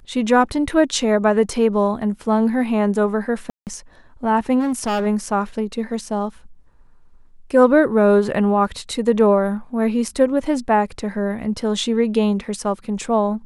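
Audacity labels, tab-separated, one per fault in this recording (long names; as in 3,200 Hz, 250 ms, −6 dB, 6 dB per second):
3.500000	3.670000	drop-out 168 ms
4.590000	5.070000	clipping −17.5 dBFS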